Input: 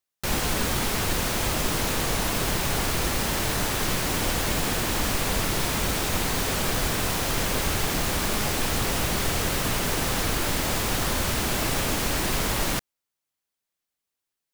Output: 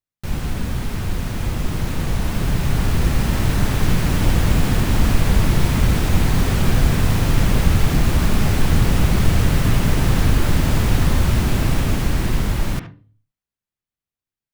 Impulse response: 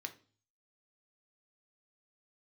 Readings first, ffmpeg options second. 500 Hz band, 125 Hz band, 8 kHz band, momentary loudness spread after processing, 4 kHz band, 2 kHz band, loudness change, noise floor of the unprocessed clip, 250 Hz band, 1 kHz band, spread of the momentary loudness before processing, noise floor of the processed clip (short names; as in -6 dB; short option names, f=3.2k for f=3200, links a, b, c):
+2.0 dB, +13.0 dB, -4.0 dB, 8 LU, -2.0 dB, +0.5 dB, +5.0 dB, -85 dBFS, +8.5 dB, +0.5 dB, 0 LU, under -85 dBFS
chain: -filter_complex "[0:a]asplit=2[a][b];[1:a]atrim=start_sample=2205,lowpass=2.5k,adelay=73[c];[b][c]afir=irnorm=-1:irlink=0,volume=-3dB[d];[a][d]amix=inputs=2:normalize=0,dynaudnorm=f=310:g=17:m=8.5dB,bass=f=250:g=14,treble=f=4k:g=-4,volume=-7dB"